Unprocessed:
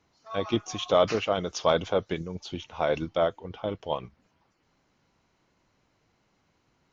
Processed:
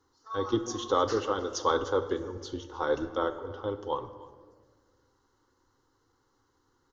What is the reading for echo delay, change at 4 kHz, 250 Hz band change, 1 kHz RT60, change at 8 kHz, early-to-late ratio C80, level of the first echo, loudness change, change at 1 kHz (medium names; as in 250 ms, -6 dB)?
305 ms, -5.0 dB, -1.0 dB, 1.3 s, no reading, 12.5 dB, -21.5 dB, -2.5 dB, -0.5 dB